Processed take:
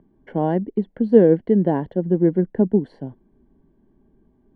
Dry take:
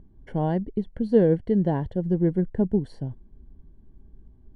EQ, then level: dynamic EQ 250 Hz, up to +4 dB, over -32 dBFS, Q 0.86; three-band isolator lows -19 dB, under 180 Hz, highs -19 dB, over 3300 Hz; +4.5 dB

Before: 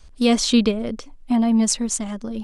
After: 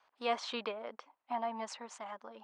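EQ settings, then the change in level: ladder band-pass 1100 Hz, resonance 45%; bell 1100 Hz -2.5 dB; +5.5 dB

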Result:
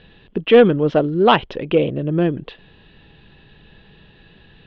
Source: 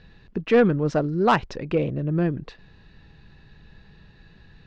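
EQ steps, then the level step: synth low-pass 3200 Hz, resonance Q 6.6; bell 460 Hz +9 dB 2.6 oct; -1.5 dB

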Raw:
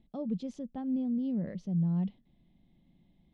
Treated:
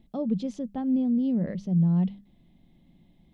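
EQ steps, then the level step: notches 50/100/150/200 Hz; +7.0 dB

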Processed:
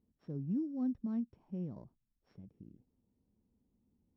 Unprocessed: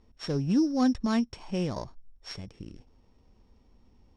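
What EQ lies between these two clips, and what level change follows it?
band-pass 190 Hz, Q 1.2; -8.5 dB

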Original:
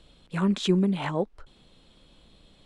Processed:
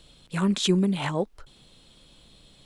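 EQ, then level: bell 130 Hz +6.5 dB 0.28 oct; high shelf 4100 Hz +11.5 dB; 0.0 dB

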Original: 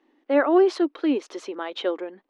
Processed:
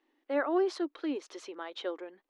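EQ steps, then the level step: dynamic EQ 2700 Hz, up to -5 dB, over -45 dBFS, Q 1.7; bell 210 Hz -10.5 dB 0.5 oct; bell 510 Hz -5 dB 2.9 oct; -5.0 dB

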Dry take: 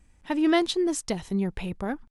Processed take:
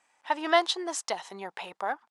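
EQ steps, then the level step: LPF 8100 Hz 12 dB/oct; dynamic EQ 2400 Hz, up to -6 dB, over -56 dBFS, Q 7.4; resonant high-pass 820 Hz, resonance Q 1.9; +1.5 dB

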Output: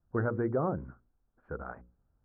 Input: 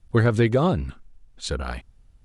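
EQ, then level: HPF 130 Hz 6 dB/oct; elliptic low-pass 1500 Hz, stop band 60 dB; notches 60/120/180/240/300/360/420/480/540 Hz; -8.0 dB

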